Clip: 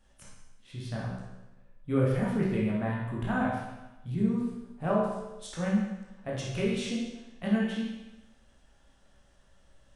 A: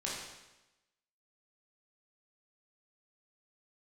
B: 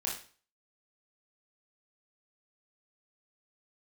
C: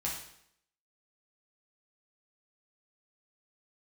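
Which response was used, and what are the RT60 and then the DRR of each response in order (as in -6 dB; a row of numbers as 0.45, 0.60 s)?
A; 1.0, 0.40, 0.70 s; -5.5, -4.0, -4.5 dB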